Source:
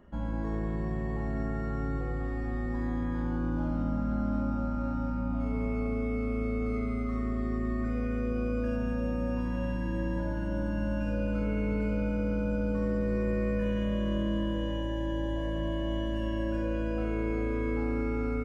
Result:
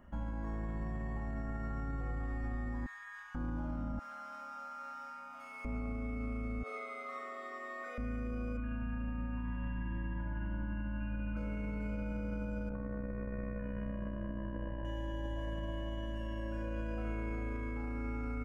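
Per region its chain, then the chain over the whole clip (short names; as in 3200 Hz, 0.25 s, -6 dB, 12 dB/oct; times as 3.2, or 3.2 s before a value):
2.86–3.35 inverse Chebyshev high-pass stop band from 530 Hz, stop band 50 dB + comb 3.8 ms, depth 49%
3.99–5.65 HPF 1300 Hz + high shelf 3900 Hz +6.5 dB
6.63–7.98 steep high-pass 410 Hz + bell 3700 Hz +10.5 dB 0.27 oct + doubler 45 ms -11.5 dB
8.57–11.37 steep low-pass 3000 Hz 48 dB/oct + bell 510 Hz -14.5 dB 0.73 oct
12.69–14.85 LPF 2100 Hz 24 dB/oct + AM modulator 63 Hz, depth 55%
whole clip: fifteen-band EQ 160 Hz -4 dB, 400 Hz -11 dB, 4000 Hz -7 dB; limiter -32 dBFS; gain +1 dB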